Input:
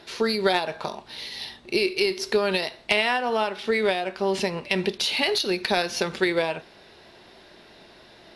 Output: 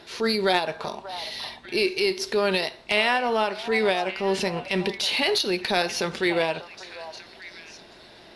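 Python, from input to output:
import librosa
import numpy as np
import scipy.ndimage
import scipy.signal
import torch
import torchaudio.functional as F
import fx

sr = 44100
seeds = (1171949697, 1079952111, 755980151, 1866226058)

y = fx.echo_stepped(x, sr, ms=591, hz=870.0, octaves=1.4, feedback_pct=70, wet_db=-10.0)
y = fx.transient(y, sr, attack_db=-6, sustain_db=-1)
y = y * 10.0 ** (1.5 / 20.0)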